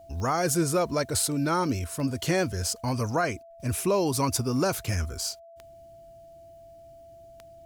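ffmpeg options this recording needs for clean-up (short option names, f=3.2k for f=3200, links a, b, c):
-af "adeclick=t=4,bandreject=f=670:w=30"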